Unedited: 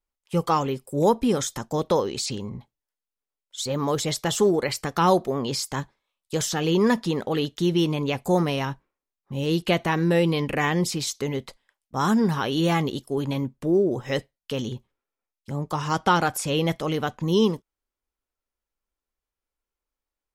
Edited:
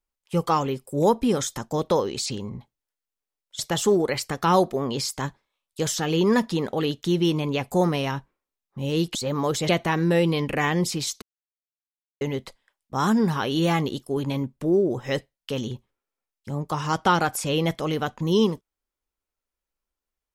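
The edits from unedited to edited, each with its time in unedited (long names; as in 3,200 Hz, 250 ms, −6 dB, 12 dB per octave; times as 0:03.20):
0:03.59–0:04.13: move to 0:09.69
0:11.22: splice in silence 0.99 s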